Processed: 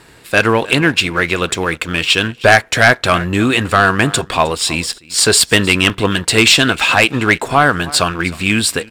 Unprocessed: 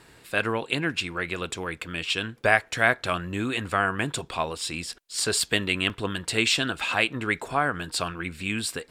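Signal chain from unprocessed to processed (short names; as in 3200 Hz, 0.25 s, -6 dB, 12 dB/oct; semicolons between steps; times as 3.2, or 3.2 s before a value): echo 0.311 s -20 dB; sample leveller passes 1; sine folder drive 5 dB, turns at -3.5 dBFS; gain +2 dB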